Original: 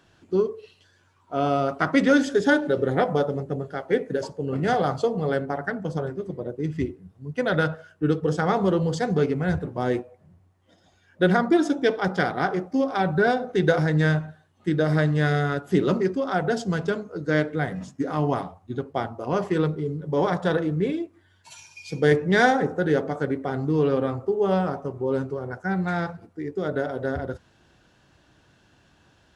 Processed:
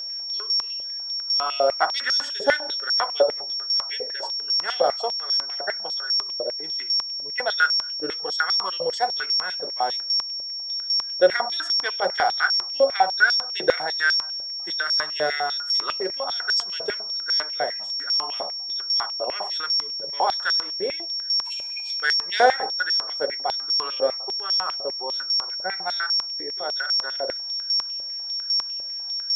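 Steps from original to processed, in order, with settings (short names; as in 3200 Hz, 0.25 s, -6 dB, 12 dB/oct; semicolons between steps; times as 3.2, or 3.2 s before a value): whine 5500 Hz -27 dBFS; stepped high-pass 10 Hz 570–5200 Hz; gain -2.5 dB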